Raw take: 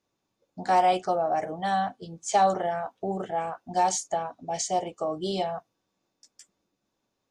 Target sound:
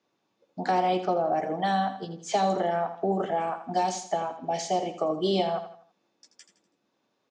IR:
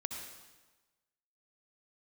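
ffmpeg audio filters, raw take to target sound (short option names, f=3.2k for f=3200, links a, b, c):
-filter_complex "[0:a]asettb=1/sr,asplit=3[a][b][c];[a]atrim=end=0.714[d];[b]atrim=start=0.71:end=1.44,asetpts=PTS-STARTPTS,afade=t=in:d=0.004:c=qsin,afade=t=out:st=0.726:d=0.004:c=qsin,aemphasis=mode=reproduction:type=50fm[e];[c]atrim=start=1.436[f];[d][e]acrossfade=d=0.004:c1=hsin:c2=qsin[g];[g][f]acrossfade=d=0.004:c1=qsin:c2=hsin,acrossover=split=370|3100[h][i][j];[i]acompressor=threshold=-31dB:ratio=6[k];[j]asoftclip=type=tanh:threshold=-32.5dB[l];[h][k][l]amix=inputs=3:normalize=0,highpass=180,lowpass=4.7k,aecho=1:1:82|164|246|328:0.282|0.113|0.0451|0.018,volume=5.5dB"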